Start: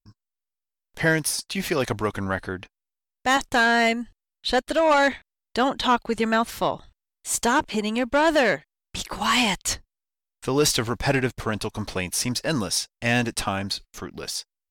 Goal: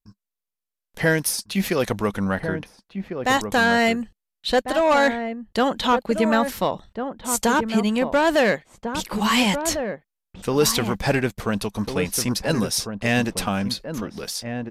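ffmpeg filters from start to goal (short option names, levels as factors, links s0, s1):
-filter_complex "[0:a]equalizer=f=200:t=o:w=0.33:g=8,equalizer=f=500:t=o:w=0.33:g=4,equalizer=f=12500:t=o:w=0.33:g=7,aresample=32000,aresample=44100,asplit=2[s0][s1];[s1]adelay=1399,volume=0.447,highshelf=f=4000:g=-31.5[s2];[s0][s2]amix=inputs=2:normalize=0"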